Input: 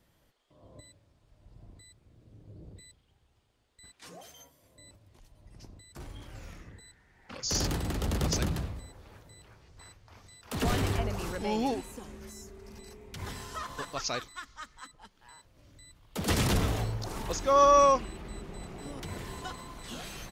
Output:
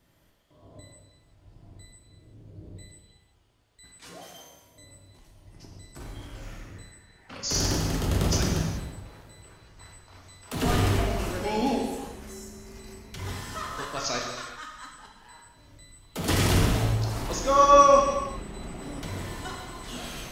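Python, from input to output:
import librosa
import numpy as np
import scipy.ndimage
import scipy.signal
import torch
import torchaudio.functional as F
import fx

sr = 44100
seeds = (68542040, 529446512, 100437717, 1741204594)

y = fx.rev_gated(x, sr, seeds[0], gate_ms=450, shape='falling', drr_db=-1.0)
y = F.gain(torch.from_numpy(y), 1.0).numpy()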